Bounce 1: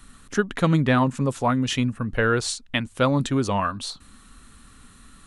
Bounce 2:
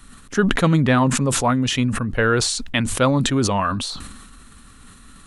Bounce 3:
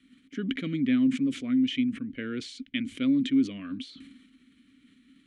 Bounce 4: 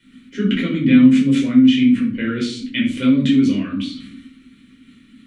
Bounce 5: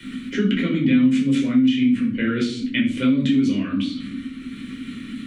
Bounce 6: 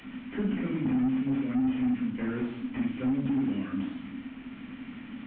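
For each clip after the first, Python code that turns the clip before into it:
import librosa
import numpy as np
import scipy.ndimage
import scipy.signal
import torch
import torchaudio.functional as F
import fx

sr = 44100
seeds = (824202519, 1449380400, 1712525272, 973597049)

y1 = fx.sustainer(x, sr, db_per_s=39.0)
y1 = F.gain(torch.from_numpy(y1), 2.5).numpy()
y2 = fx.vowel_filter(y1, sr, vowel='i')
y3 = fx.room_shoebox(y2, sr, seeds[0], volume_m3=440.0, walls='furnished', distance_m=4.8)
y3 = F.gain(torch.from_numpy(y3), 4.0).numpy()
y4 = fx.band_squash(y3, sr, depth_pct=70)
y4 = F.gain(torch.from_numpy(y4), -3.5).numpy()
y5 = fx.delta_mod(y4, sr, bps=16000, step_db=-34.5)
y5 = F.gain(torch.from_numpy(y5), -9.0).numpy()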